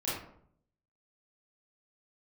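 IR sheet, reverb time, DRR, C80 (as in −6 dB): 0.65 s, −10.0 dB, 5.5 dB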